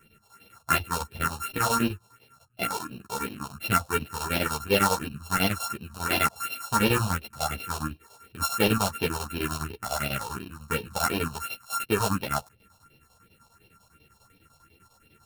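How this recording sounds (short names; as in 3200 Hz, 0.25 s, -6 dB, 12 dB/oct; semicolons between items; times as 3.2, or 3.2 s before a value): a buzz of ramps at a fixed pitch in blocks of 32 samples; phasing stages 4, 2.8 Hz, lowest notch 310–1300 Hz; chopped level 10 Hz, depth 65%, duty 70%; a shimmering, thickened sound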